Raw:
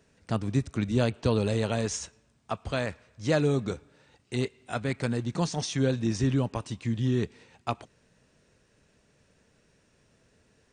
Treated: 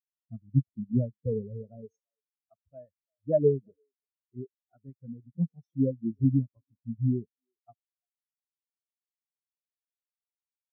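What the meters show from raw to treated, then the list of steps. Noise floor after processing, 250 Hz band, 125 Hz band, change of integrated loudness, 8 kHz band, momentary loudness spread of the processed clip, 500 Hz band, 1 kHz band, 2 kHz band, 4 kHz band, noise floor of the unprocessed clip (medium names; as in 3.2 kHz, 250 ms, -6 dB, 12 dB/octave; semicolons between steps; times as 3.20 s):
under -85 dBFS, -2.0 dB, -2.0 dB, 0.0 dB, under -40 dB, 21 LU, -1.5 dB, under -20 dB, under -35 dB, under -40 dB, -67 dBFS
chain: bass shelf 120 Hz -3 dB; speakerphone echo 340 ms, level -11 dB; spectral contrast expander 4:1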